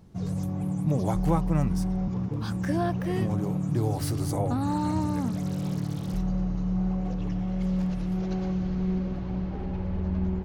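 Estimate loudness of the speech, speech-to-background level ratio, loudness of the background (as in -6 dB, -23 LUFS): -30.0 LUFS, 0.0 dB, -30.0 LUFS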